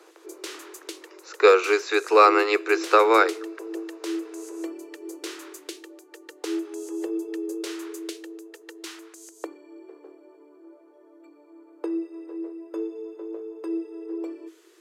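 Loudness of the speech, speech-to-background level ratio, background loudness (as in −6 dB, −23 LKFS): −19.0 LKFS, 15.5 dB, −34.5 LKFS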